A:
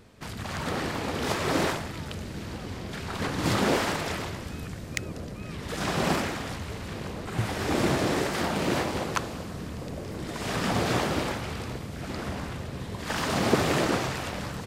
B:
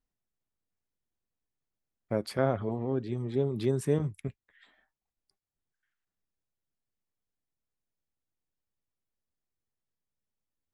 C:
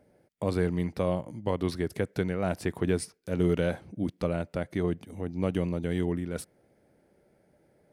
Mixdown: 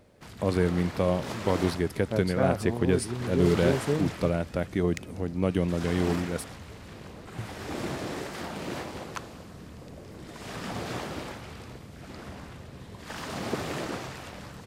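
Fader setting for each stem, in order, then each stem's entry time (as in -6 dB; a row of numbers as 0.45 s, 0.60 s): -8.5 dB, 0.0 dB, +2.5 dB; 0.00 s, 0.00 s, 0.00 s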